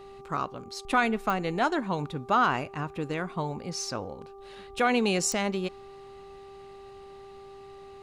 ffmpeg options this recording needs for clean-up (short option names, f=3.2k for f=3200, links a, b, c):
-af "adeclick=t=4,bandreject=f=394.2:t=h:w=4,bandreject=f=788.4:t=h:w=4,bandreject=f=1.1826k:t=h:w=4"